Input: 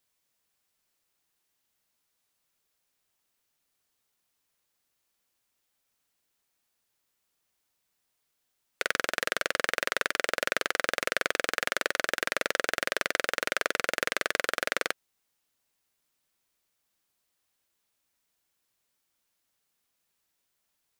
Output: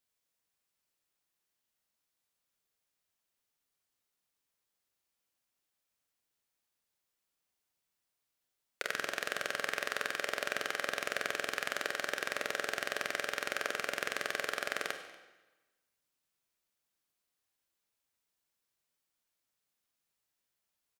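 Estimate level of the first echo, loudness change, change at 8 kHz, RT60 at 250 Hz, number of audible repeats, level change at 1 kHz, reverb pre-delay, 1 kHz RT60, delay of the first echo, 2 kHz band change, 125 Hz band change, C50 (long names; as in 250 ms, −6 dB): −22.0 dB, −6.5 dB, −6.5 dB, 1.1 s, 1, −6.5 dB, 27 ms, 1.1 s, 238 ms, −6.5 dB, −6.0 dB, 7.5 dB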